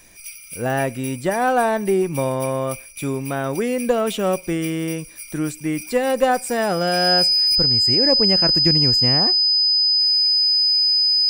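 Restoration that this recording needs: band-stop 5 kHz, Q 30

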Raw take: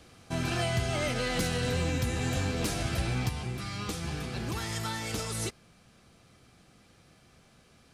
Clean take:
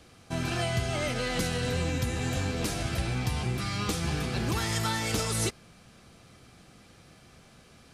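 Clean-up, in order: clip repair -21.5 dBFS; trim 0 dB, from 3.29 s +5 dB

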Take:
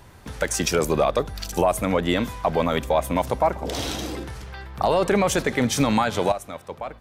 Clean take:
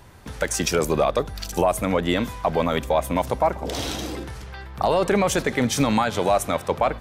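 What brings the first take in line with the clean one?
de-click; trim 0 dB, from 6.32 s +11.5 dB

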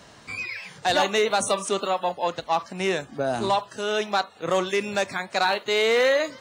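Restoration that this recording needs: clip repair -13.5 dBFS

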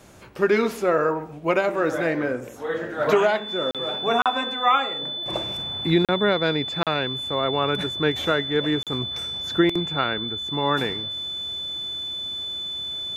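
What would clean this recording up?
band-stop 3.5 kHz, Q 30; interpolate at 3.71/4.22/6.05/6.83/8.83 s, 37 ms

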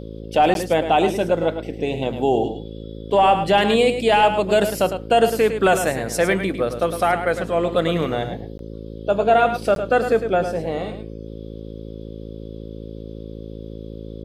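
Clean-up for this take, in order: de-hum 54.6 Hz, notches 10; interpolate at 0.54/8.58/9.75 s, 12 ms; inverse comb 106 ms -9 dB

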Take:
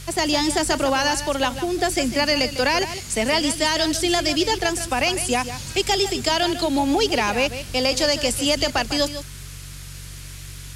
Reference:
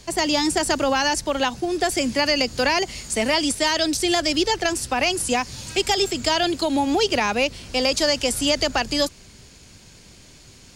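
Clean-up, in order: de-hum 46.9 Hz, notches 3; noise print and reduce 11 dB; inverse comb 151 ms -11.5 dB

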